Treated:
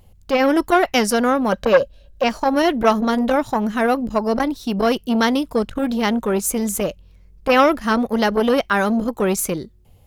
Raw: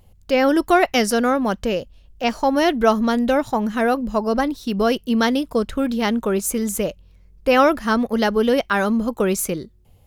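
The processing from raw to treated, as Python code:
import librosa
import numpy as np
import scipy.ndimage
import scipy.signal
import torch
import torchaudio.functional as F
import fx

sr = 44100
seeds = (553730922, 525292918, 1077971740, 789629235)

y = fx.small_body(x, sr, hz=(560.0, 1600.0, 3900.0), ring_ms=45, db=15, at=(1.52, 2.24))
y = fx.transformer_sat(y, sr, knee_hz=840.0)
y = y * librosa.db_to_amplitude(2.0)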